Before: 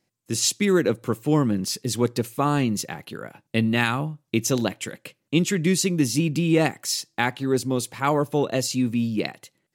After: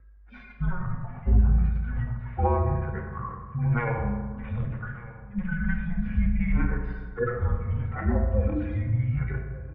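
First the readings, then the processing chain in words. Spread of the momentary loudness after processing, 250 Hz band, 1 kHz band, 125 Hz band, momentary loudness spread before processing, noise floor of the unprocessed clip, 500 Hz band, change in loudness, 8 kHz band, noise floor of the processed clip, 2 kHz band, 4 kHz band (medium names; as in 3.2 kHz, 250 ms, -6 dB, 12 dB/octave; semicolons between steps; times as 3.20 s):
10 LU, -8.5 dB, -5.5 dB, +1.5 dB, 8 LU, -77 dBFS, -9.0 dB, -4.5 dB, under -40 dB, -47 dBFS, -7.5 dB, under -30 dB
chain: harmonic-percussive separation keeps harmonic; tilt shelf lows -7.5 dB, about 670 Hz; compression, threshold -30 dBFS, peak gain reduction 12 dB; whistle 410 Hz -59 dBFS; delay 1198 ms -20 dB; FDN reverb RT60 1.5 s, low-frequency decay 1.25×, high-frequency decay 0.55×, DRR 0.5 dB; mistuned SSB -360 Hz 180–2100 Hz; trim +7 dB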